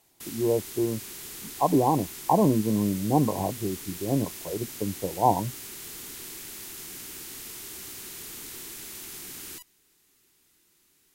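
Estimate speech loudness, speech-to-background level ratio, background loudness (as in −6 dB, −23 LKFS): −26.5 LKFS, 11.5 dB, −38.0 LKFS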